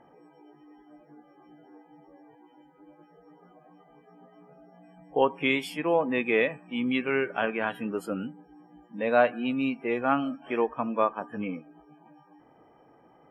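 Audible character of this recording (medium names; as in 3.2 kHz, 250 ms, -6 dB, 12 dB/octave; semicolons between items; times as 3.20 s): noise floor -59 dBFS; spectral tilt -3.5 dB/octave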